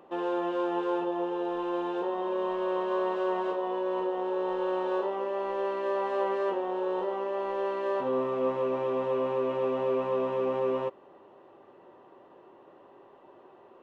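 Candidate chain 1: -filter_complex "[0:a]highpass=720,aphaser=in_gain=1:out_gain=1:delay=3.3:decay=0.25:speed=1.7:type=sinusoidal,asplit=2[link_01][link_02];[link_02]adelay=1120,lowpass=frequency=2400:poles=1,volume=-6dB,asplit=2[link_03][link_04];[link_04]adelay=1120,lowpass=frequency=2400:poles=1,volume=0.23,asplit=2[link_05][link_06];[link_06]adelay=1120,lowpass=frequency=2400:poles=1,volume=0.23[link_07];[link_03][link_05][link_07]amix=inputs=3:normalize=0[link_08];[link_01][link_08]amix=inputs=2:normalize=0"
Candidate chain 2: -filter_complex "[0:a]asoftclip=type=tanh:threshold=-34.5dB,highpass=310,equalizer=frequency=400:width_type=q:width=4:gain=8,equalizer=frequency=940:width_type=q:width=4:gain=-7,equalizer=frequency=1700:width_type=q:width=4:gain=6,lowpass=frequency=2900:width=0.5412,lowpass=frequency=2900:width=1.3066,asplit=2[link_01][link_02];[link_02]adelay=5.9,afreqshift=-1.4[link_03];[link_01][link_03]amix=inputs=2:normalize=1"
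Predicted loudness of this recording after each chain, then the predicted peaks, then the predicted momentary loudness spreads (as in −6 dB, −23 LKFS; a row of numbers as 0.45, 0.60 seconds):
−35.0, −37.5 LKFS; −20.0, −26.0 dBFS; 8, 21 LU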